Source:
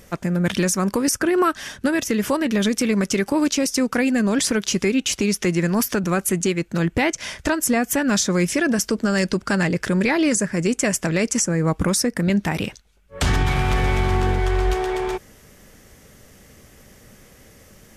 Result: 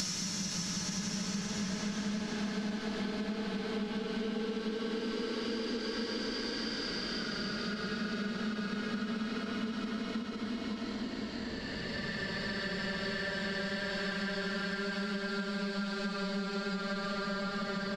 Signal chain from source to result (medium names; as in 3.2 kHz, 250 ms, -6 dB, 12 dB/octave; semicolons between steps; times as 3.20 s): time reversed locally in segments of 108 ms; in parallel at -6 dB: integer overflow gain 17.5 dB; on the sum: resonant low-pass 4.1 kHz, resonance Q 1.9; Paulstretch 46×, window 0.10 s, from 8.79 s; on a send: feedback delay 515 ms, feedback 31%, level -5 dB; on the sum: compression 6:1, threshold -28 dBFS, peak gain reduction 15 dB; endings held to a fixed fall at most 140 dB/s; trim -5.5 dB